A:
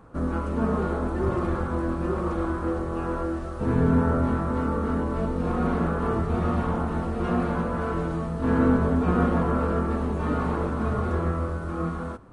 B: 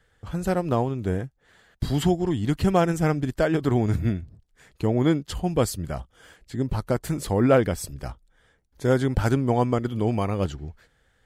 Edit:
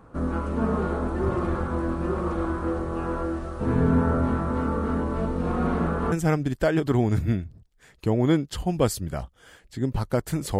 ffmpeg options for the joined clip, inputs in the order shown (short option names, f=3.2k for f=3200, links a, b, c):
-filter_complex "[0:a]apad=whole_dur=10.59,atrim=end=10.59,atrim=end=6.122[a];[1:a]atrim=start=2.888:end=7.36[b];[a][b]acrossfade=d=0.004:c1=hsin:c2=hsin"